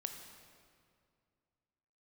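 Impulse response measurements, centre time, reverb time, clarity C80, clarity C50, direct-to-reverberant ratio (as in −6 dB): 42 ms, 2.2 s, 7.0 dB, 6.0 dB, 4.5 dB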